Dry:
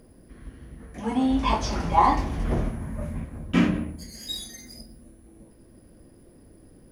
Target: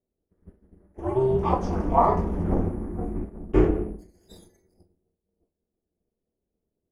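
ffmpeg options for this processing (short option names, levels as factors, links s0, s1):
-af "aeval=exprs='val(0)*sin(2*PI*130*n/s)':c=same,equalizer=f=125:t=o:w=1:g=-11,equalizer=f=2000:t=o:w=1:g=-3,equalizer=f=4000:t=o:w=1:g=-10,agate=range=0.0224:threshold=0.0141:ratio=3:detection=peak,tiltshelf=f=1400:g=8"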